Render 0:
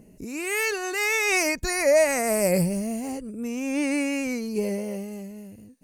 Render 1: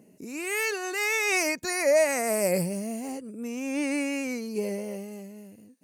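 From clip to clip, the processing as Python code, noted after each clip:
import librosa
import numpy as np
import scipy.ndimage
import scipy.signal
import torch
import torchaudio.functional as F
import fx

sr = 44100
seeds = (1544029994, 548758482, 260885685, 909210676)

y = scipy.signal.sosfilt(scipy.signal.butter(2, 190.0, 'highpass', fs=sr, output='sos'), x)
y = F.gain(torch.from_numpy(y), -2.5).numpy()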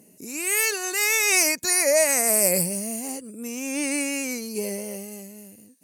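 y = fx.peak_eq(x, sr, hz=12000.0, db=14.5, octaves=2.2)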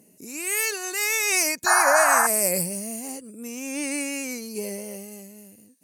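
y = fx.spec_paint(x, sr, seeds[0], shape='noise', start_s=1.66, length_s=0.61, low_hz=640.0, high_hz=1800.0, level_db=-17.0)
y = F.gain(torch.from_numpy(y), -2.5).numpy()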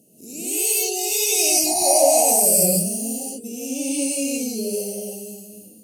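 y = scipy.signal.sosfilt(scipy.signal.cheby1(3, 1.0, [690.0, 3000.0], 'bandstop', fs=sr, output='sos'), x)
y = fx.rev_gated(y, sr, seeds[1], gate_ms=210, shape='rising', drr_db=-6.0)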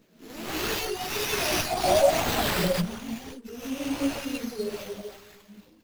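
y = fx.chorus_voices(x, sr, voices=2, hz=0.9, base_ms=15, depth_ms=3.3, mix_pct=50)
y = fx.dereverb_blind(y, sr, rt60_s=1.5)
y = fx.running_max(y, sr, window=5)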